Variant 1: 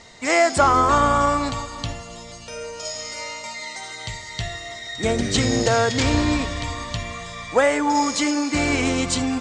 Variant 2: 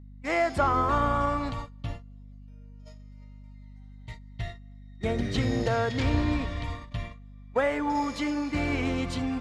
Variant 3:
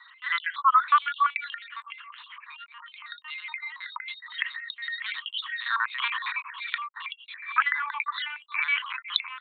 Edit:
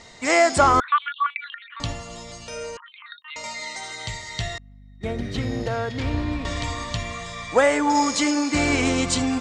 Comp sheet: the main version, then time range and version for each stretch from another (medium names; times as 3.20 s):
1
0.80–1.80 s: from 3
2.77–3.36 s: from 3
4.58–6.45 s: from 2